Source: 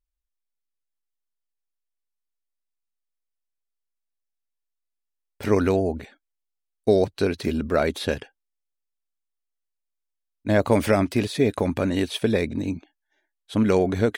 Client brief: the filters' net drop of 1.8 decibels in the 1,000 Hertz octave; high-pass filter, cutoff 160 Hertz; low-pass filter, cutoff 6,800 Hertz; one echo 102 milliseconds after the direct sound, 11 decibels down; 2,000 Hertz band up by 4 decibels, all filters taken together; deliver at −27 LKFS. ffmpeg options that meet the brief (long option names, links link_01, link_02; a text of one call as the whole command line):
ffmpeg -i in.wav -af "highpass=160,lowpass=6800,equalizer=frequency=1000:width_type=o:gain=-4.5,equalizer=frequency=2000:width_type=o:gain=6.5,aecho=1:1:102:0.282,volume=-3.5dB" out.wav